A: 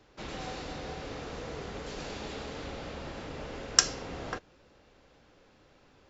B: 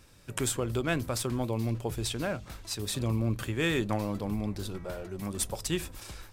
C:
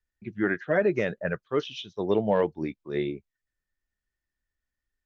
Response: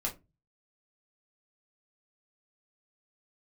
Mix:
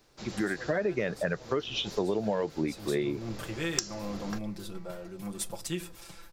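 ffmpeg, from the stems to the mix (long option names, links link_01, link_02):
-filter_complex "[0:a]aexciter=amount=3.1:drive=4.4:freq=4100,volume=-4.5dB[link_01];[1:a]aecho=1:1:5.9:0.88,volume=-7.5dB,afade=type=in:start_time=2:duration=0.45:silence=0.398107,asplit=2[link_02][link_03];[link_03]volume=-12.5dB[link_04];[2:a]dynaudnorm=framelen=510:gausssize=3:maxgain=11.5dB,volume=1dB[link_05];[link_02][link_05]amix=inputs=2:normalize=0,highpass=79,alimiter=limit=-8dB:level=0:latency=1:release=234,volume=0dB[link_06];[3:a]atrim=start_sample=2205[link_07];[link_04][link_07]afir=irnorm=-1:irlink=0[link_08];[link_01][link_06][link_08]amix=inputs=3:normalize=0,acompressor=threshold=-28dB:ratio=4"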